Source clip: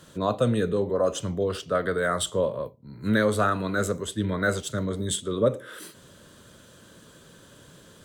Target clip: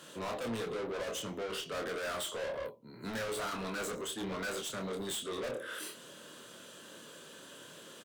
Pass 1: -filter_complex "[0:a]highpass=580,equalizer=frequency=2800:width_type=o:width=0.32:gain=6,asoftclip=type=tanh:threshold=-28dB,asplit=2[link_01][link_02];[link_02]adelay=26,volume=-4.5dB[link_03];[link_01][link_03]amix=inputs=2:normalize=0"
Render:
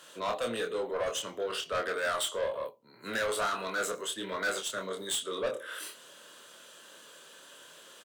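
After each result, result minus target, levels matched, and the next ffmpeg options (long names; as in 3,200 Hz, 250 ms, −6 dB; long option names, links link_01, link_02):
250 Hz band −7.0 dB; soft clipping: distortion −6 dB
-filter_complex "[0:a]highpass=280,equalizer=frequency=2800:width_type=o:width=0.32:gain=6,asoftclip=type=tanh:threshold=-28dB,asplit=2[link_01][link_02];[link_02]adelay=26,volume=-4.5dB[link_03];[link_01][link_03]amix=inputs=2:normalize=0"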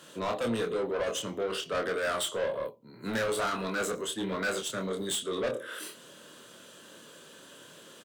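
soft clipping: distortion −4 dB
-filter_complex "[0:a]highpass=280,equalizer=frequency=2800:width_type=o:width=0.32:gain=6,asoftclip=type=tanh:threshold=-37dB,asplit=2[link_01][link_02];[link_02]adelay=26,volume=-4.5dB[link_03];[link_01][link_03]amix=inputs=2:normalize=0"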